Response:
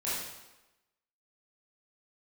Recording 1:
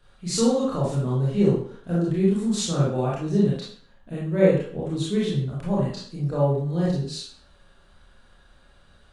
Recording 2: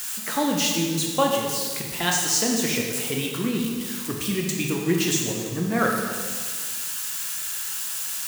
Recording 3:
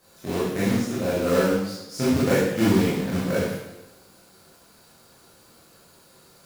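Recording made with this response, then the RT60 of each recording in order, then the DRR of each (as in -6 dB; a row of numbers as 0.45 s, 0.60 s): 3; 0.55 s, 1.6 s, 1.0 s; -7.0 dB, -0.5 dB, -10.5 dB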